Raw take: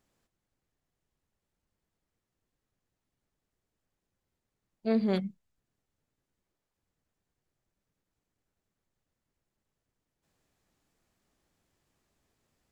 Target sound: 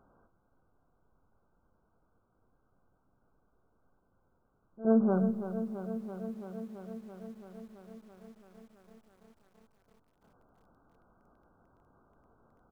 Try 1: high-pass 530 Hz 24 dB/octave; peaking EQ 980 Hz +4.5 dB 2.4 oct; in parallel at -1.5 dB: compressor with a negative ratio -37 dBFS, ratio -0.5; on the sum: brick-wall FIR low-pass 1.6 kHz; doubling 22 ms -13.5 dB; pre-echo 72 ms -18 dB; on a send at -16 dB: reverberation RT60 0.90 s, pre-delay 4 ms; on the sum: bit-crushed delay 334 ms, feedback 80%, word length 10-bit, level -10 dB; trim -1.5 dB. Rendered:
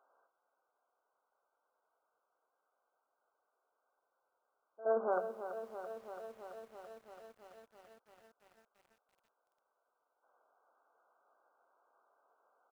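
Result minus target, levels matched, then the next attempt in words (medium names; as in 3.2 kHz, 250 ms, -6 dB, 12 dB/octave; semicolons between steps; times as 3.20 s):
500 Hz band +3.5 dB
peaking EQ 980 Hz +4.5 dB 2.4 oct; in parallel at -1.5 dB: compressor with a negative ratio -37 dBFS, ratio -0.5; on the sum: brick-wall FIR low-pass 1.6 kHz; doubling 22 ms -13.5 dB; pre-echo 72 ms -18 dB; on a send at -16 dB: reverberation RT60 0.90 s, pre-delay 4 ms; on the sum: bit-crushed delay 334 ms, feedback 80%, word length 10-bit, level -10 dB; trim -1.5 dB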